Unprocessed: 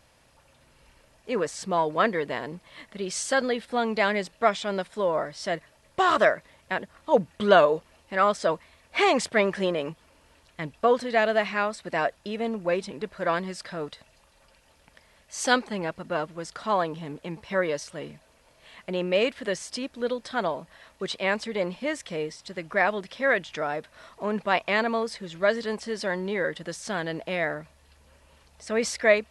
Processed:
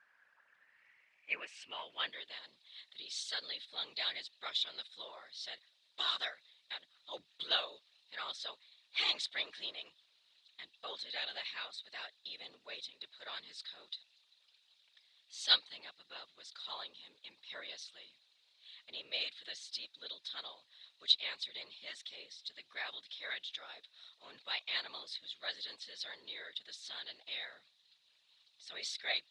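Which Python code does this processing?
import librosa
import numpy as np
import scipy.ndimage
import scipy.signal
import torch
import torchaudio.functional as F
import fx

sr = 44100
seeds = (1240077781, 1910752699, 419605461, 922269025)

y = fx.whisperise(x, sr, seeds[0])
y = fx.filter_sweep_bandpass(y, sr, from_hz=1600.0, to_hz=3800.0, start_s=0.4, end_s=2.36, q=7.8)
y = fx.upward_expand(y, sr, threshold_db=-43.0, expansion=1.5)
y = F.gain(torch.from_numpy(y), 10.0).numpy()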